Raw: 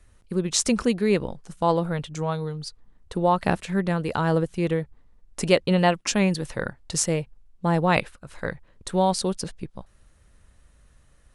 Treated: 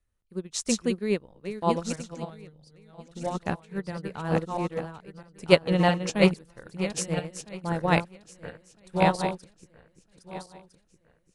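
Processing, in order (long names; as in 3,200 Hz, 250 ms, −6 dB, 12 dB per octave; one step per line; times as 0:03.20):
feedback delay that plays each chunk backwards 654 ms, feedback 61%, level −3.5 dB
0:02.20–0:03.35: graphic EQ with 15 bands 100 Hz −4 dB, 400 Hz −4 dB, 1,000 Hz −8 dB
expander for the loud parts 2.5 to 1, over −30 dBFS
level +2.5 dB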